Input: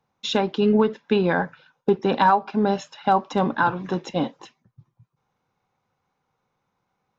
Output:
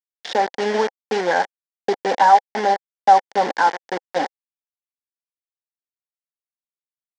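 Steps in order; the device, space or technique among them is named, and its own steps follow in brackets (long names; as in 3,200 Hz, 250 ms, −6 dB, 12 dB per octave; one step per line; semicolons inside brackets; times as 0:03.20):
hand-held game console (bit reduction 4 bits; loudspeaker in its box 420–5,300 Hz, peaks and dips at 520 Hz +4 dB, 800 Hz +9 dB, 1,200 Hz −9 dB, 1,800 Hz +6 dB, 2,600 Hz −9 dB, 3,900 Hz −6 dB)
level +1 dB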